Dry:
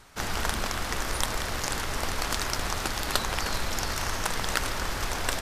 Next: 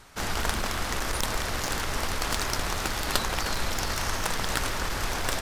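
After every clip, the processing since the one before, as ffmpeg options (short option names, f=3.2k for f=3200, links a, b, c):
-af "aeval=exprs='clip(val(0),-1,0.0531)':c=same,volume=1.5dB"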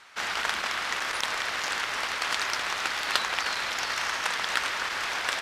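-af "bandpass=f=2.2k:t=q:w=0.8:csg=0,volume=5dB"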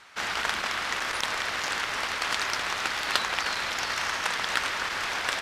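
-af "lowshelf=f=300:g=5.5"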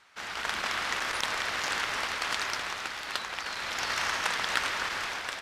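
-af "dynaudnorm=f=110:g=9:m=11.5dB,volume=-8.5dB"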